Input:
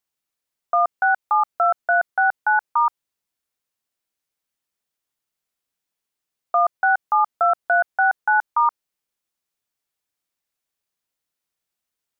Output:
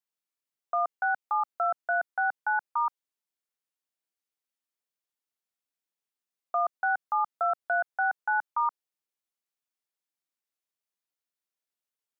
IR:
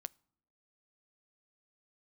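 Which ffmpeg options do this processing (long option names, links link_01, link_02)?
-af "highpass=200,volume=-9dB"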